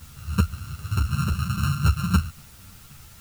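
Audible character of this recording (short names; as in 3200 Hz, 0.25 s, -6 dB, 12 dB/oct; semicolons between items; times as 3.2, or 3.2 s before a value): a buzz of ramps at a fixed pitch in blocks of 32 samples; tremolo saw down 3.8 Hz, depth 55%; a quantiser's noise floor 8-bit, dither triangular; a shimmering, thickened sound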